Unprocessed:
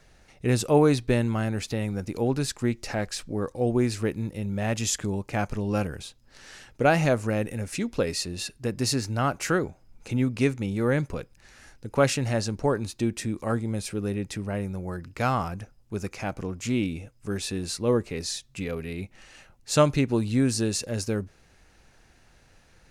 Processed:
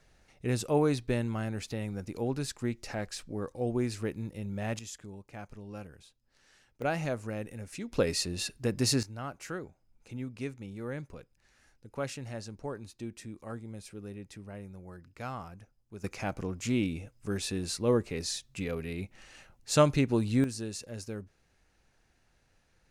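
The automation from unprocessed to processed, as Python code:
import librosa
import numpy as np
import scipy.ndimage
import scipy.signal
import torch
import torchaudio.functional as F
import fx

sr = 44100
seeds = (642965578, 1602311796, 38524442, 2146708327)

y = fx.gain(x, sr, db=fx.steps((0.0, -7.0), (4.79, -17.0), (6.82, -10.5), (7.92, -1.5), (9.03, -14.0), (16.04, -3.0), (20.44, -11.5)))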